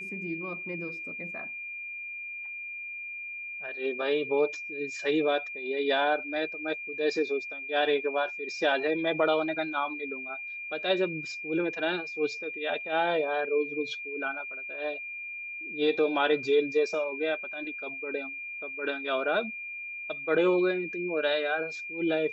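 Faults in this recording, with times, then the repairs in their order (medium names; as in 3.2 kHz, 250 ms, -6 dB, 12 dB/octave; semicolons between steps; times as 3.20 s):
whine 2.4 kHz -36 dBFS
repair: band-stop 2.4 kHz, Q 30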